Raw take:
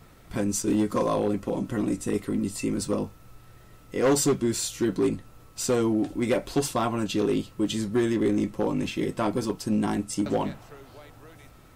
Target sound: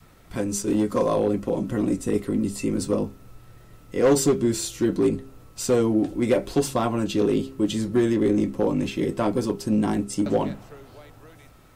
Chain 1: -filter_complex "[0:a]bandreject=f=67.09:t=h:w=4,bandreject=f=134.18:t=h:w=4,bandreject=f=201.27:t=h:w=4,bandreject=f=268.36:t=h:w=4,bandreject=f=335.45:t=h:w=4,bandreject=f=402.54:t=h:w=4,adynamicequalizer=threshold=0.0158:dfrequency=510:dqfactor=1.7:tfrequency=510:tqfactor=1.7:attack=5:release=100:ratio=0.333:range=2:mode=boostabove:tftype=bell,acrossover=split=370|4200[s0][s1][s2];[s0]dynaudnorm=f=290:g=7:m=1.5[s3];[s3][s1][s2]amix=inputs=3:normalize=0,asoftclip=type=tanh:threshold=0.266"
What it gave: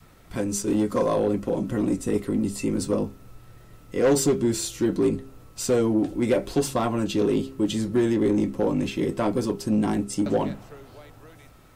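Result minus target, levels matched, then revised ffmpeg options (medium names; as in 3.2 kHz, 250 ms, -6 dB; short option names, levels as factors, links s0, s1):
saturation: distortion +21 dB
-filter_complex "[0:a]bandreject=f=67.09:t=h:w=4,bandreject=f=134.18:t=h:w=4,bandreject=f=201.27:t=h:w=4,bandreject=f=268.36:t=h:w=4,bandreject=f=335.45:t=h:w=4,bandreject=f=402.54:t=h:w=4,adynamicequalizer=threshold=0.0158:dfrequency=510:dqfactor=1.7:tfrequency=510:tqfactor=1.7:attack=5:release=100:ratio=0.333:range=2:mode=boostabove:tftype=bell,acrossover=split=370|4200[s0][s1][s2];[s0]dynaudnorm=f=290:g=7:m=1.5[s3];[s3][s1][s2]amix=inputs=3:normalize=0,asoftclip=type=tanh:threshold=1"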